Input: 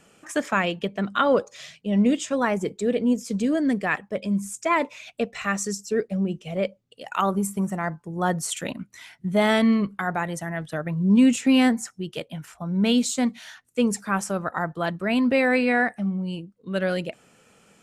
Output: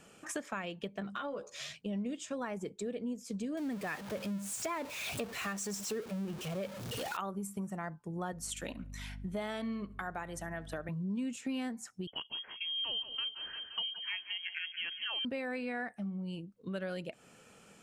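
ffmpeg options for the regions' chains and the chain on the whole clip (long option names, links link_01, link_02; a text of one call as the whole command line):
ffmpeg -i in.wav -filter_complex "[0:a]asettb=1/sr,asplit=3[link_01][link_02][link_03];[link_01]atrim=end=1.004[link_04];[link_02]atrim=start=1:end=1.73,asetpts=PTS-STARTPTS,afade=type=in:duration=0.004:curve=qsin,afade=type=out:start_time=0.726:duration=0.004:curve=qsin,acompressor=threshold=-26dB:ratio=6:attack=3.2:release=140:knee=1:detection=peak,asplit=2[link_05][link_06];[link_06]adelay=14,volume=-3dB[link_07];[link_05][link_07]amix=inputs=2:normalize=0,atrim=end_sample=32193[link_08];[link_03]atrim=start=1.726[link_09];[link_04][link_08]acrossfade=duration=0.004:curve1=hsin:curve2=qsin[link_10];[link_10][link_09]acrossfade=duration=0.004:curve1=qsin:curve2=hsin,asettb=1/sr,asplit=3[link_11][link_12][link_13];[link_11]atrim=end=3.574[link_14];[link_12]atrim=start=3.57:end=7.17,asetpts=PTS-STARTPTS,afade=type=in:duration=0.004:curve=qsin,afade=type=out:start_time=3.596:duration=0.004:curve=qsin,aeval=exprs='val(0)+0.5*0.0422*sgn(val(0))':channel_layout=same,highpass=50[link_15];[link_13]atrim=start=7.166[link_16];[link_14][link_15]acrossfade=duration=0.004:curve1=hsin:curve2=qsin[link_17];[link_17][link_16]acrossfade=duration=0.004:curve1=qsin:curve2=hsin,asettb=1/sr,asplit=3[link_18][link_19][link_20];[link_18]atrim=end=8.324[link_21];[link_19]atrim=start=8.32:end=10.89,asetpts=PTS-STARTPTS,afade=type=in:duration=0.004:curve=qsin,afade=type=out:start_time=2.566:duration=0.004:curve=qsin,highpass=200,asplit=2[link_22][link_23];[link_23]adelay=71,lowpass=frequency=3400:poles=1,volume=-21dB,asplit=2[link_24][link_25];[link_25]adelay=71,lowpass=frequency=3400:poles=1,volume=0.37,asplit=2[link_26][link_27];[link_27]adelay=71,lowpass=frequency=3400:poles=1,volume=0.37[link_28];[link_22][link_24][link_26][link_28]amix=inputs=4:normalize=0,atrim=end_sample=113337,aeval=exprs='val(0)+0.00891*(sin(2*PI*50*n/s)+sin(2*PI*2*50*n/s)/2+sin(2*PI*3*50*n/s)/3+sin(2*PI*4*50*n/s)/4+sin(2*PI*5*50*n/s)/5)':channel_layout=same[link_29];[link_20]atrim=start=10.886[link_30];[link_21][link_29]acrossfade=duration=0.004:curve1=hsin:curve2=qsin[link_31];[link_31][link_30]acrossfade=duration=0.004:curve1=qsin:curve2=hsin,asettb=1/sr,asplit=3[link_32][link_33][link_34];[link_32]atrim=end=12.074[link_35];[link_33]atrim=start=12.07:end=15.25,asetpts=PTS-STARTPTS,afade=type=in:duration=0.004:curve=qsin,afade=type=out:start_time=3.176:duration=0.004:curve=qsin,aecho=1:1:173|346|519|692|865:0.224|0.107|0.0516|0.0248|0.0119,atrim=end_sample=140238,lowpass=frequency=2900:width_type=q:width=0.5098,lowpass=frequency=2900:width_type=q:width=0.6013,lowpass=frequency=2900:width_type=q:width=0.9,lowpass=frequency=2900:width_type=q:width=2.563,afreqshift=-3400[link_36];[link_34]atrim=start=15.246[link_37];[link_35][link_36]acrossfade=duration=0.004:curve1=hsin:curve2=qsin[link_38];[link_38][link_37]acrossfade=duration=0.004:curve1=qsin:curve2=hsin,bandreject=frequency=2000:width=24,acompressor=threshold=-36dB:ratio=4,volume=-2dB" out.wav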